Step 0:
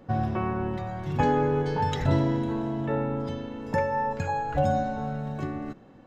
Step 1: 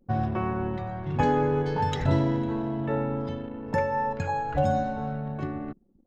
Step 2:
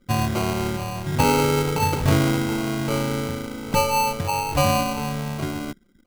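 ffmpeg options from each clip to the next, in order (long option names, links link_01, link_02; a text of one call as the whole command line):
ffmpeg -i in.wav -af "anlmdn=0.398" out.wav
ffmpeg -i in.wav -af "acrusher=samples=25:mix=1:aa=0.000001,volume=4.5dB" out.wav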